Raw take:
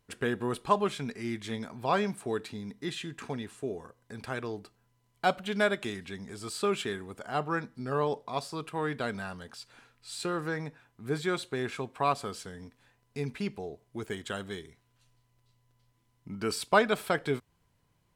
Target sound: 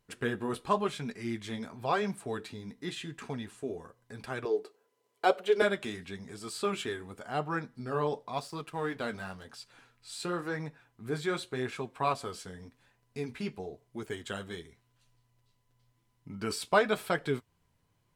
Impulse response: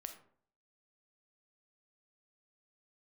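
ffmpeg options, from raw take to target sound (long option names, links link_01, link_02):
-filter_complex "[0:a]asettb=1/sr,asplit=3[link_01][link_02][link_03];[link_01]atrim=end=4.454[link_04];[link_02]atrim=start=4.45:end=5.62,asetpts=PTS-STARTPTS,afade=type=in:duration=0.004:curve=qsin,afade=type=out:start_time=1.166:duration=0.004:curve=qsin,highpass=frequency=430:width_type=q:width=4.6[link_05];[link_03]atrim=start=5.616[link_06];[link_04][link_05]acrossfade=duration=0.004:curve1=hsin:curve2=qsin[link_07];[link_07][link_06]acrossfade=duration=0.004:curve1=qsin:curve2=hsin,asettb=1/sr,asplit=3[link_08][link_09][link_10];[link_08]atrim=end=8.364[link_11];[link_09]atrim=start=8.36:end=9.45,asetpts=PTS-STARTPTS,afade=type=in:duration=0.004:curve=qsin,afade=type=out:start_time=1.086:duration=0.004:curve=qsin,aeval=exprs='sgn(val(0))*max(abs(val(0))-0.0015,0)':channel_layout=same[link_12];[link_10]atrim=start=9.446[link_13];[link_11][link_12]acrossfade=duration=0.004:curve1=hsin:curve2=qsin[link_14];[link_14][link_13]acrossfade=duration=0.004:curve1=qsin:curve2=hsin,flanger=delay=4.7:depth=8.7:regen=-39:speed=0.93:shape=triangular,volume=2dB"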